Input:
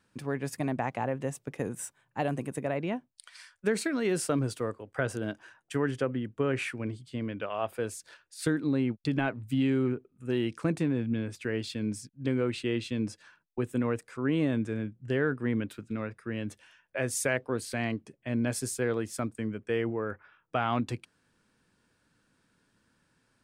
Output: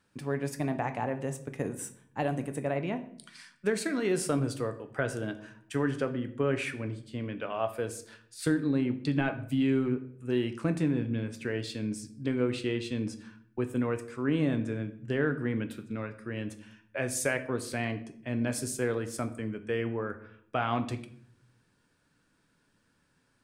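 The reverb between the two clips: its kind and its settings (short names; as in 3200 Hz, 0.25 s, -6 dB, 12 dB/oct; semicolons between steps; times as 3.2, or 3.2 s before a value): shoebox room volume 97 m³, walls mixed, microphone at 0.32 m; gain -1 dB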